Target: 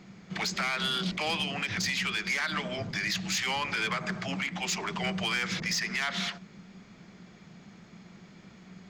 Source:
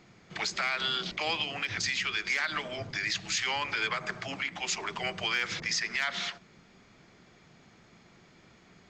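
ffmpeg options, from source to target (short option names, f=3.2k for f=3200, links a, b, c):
-af "equalizer=f=190:w=3.3:g=12.5,asoftclip=type=tanh:threshold=-25.5dB,volume=2.5dB"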